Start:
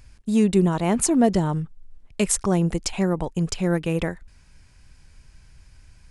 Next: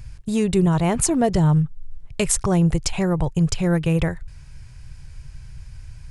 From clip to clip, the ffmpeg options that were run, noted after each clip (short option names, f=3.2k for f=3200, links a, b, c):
-filter_complex "[0:a]lowshelf=f=170:t=q:w=3:g=6.5,asplit=2[a][b];[b]acompressor=threshold=-26dB:ratio=6,volume=-1dB[c];[a][c]amix=inputs=2:normalize=0,volume=-1dB"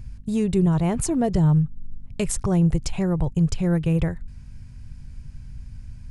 -af "lowshelf=f=450:g=7.5,aeval=exprs='val(0)+0.0126*(sin(2*PI*50*n/s)+sin(2*PI*2*50*n/s)/2+sin(2*PI*3*50*n/s)/3+sin(2*PI*4*50*n/s)/4+sin(2*PI*5*50*n/s)/5)':c=same,volume=-7.5dB"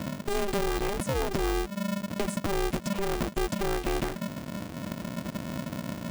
-filter_complex "[0:a]acrossover=split=400|1700[a][b][c];[a]acompressor=threshold=-30dB:ratio=4[d];[b]acompressor=threshold=-41dB:ratio=4[e];[c]acompressor=threshold=-45dB:ratio=4[f];[d][e][f]amix=inputs=3:normalize=0,aeval=exprs='val(0)*sgn(sin(2*PI*200*n/s))':c=same,volume=1.5dB"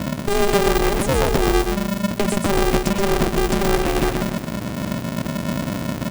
-af "aeval=exprs='val(0)+0.00501*(sin(2*PI*60*n/s)+sin(2*PI*2*60*n/s)/2+sin(2*PI*3*60*n/s)/3+sin(2*PI*4*60*n/s)/4+sin(2*PI*5*60*n/s)/5)':c=same,aecho=1:1:125|250|375|500|625:0.631|0.233|0.0864|0.032|0.0118,volume=9dB"